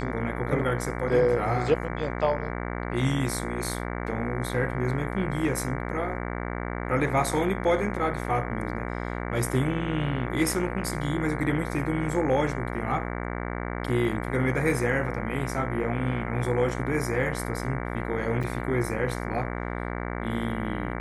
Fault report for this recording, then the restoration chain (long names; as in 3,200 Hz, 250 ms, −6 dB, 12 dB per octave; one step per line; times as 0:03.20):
mains buzz 60 Hz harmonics 38 −32 dBFS
0:18.43–0:18.44: drop-out 6 ms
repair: hum removal 60 Hz, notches 38
repair the gap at 0:18.43, 6 ms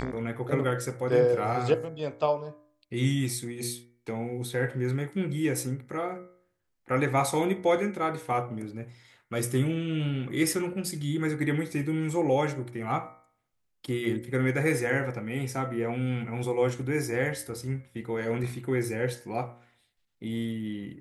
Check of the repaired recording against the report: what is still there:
none of them is left